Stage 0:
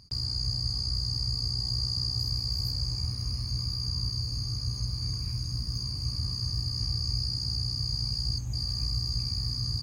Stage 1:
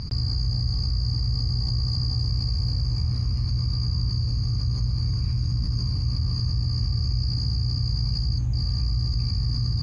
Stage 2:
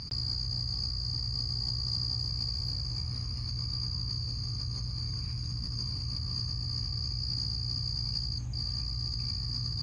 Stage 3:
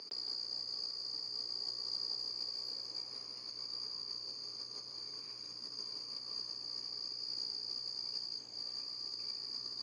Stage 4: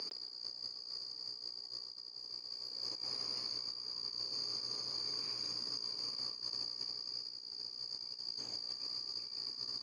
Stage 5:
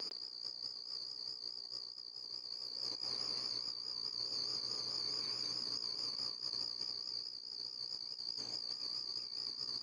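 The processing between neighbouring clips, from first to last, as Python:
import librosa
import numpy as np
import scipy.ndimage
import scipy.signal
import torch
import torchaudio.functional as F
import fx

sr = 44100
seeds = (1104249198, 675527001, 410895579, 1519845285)

y1 = scipy.signal.sosfilt(scipy.signal.butter(2, 3700.0, 'lowpass', fs=sr, output='sos'), x)
y1 = fx.low_shelf(y1, sr, hz=270.0, db=6.0)
y1 = fx.env_flatten(y1, sr, amount_pct=70)
y2 = fx.tilt_eq(y1, sr, slope=2.0)
y2 = F.gain(torch.from_numpy(y2), -5.0).numpy()
y3 = fx.ladder_highpass(y2, sr, hz=350.0, resonance_pct=45)
y3 = y3 + 10.0 ** (-7.5 / 20.0) * np.pad(y3, (int(167 * sr / 1000.0), 0))[:len(y3)]
y3 = F.gain(torch.from_numpy(y3), 2.5).numpy()
y4 = fx.over_compress(y3, sr, threshold_db=-46.0, ratio=-0.5)
y4 = F.gain(torch.from_numpy(y4), 3.5).numpy()
y5 = fx.vibrato(y4, sr, rate_hz=4.7, depth_cents=54.0)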